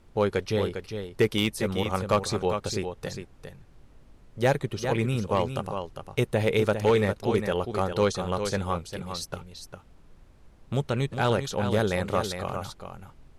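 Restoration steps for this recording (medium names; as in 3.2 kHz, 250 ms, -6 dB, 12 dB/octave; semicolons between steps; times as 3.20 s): clip repair -14 dBFS; noise print and reduce 20 dB; inverse comb 403 ms -8 dB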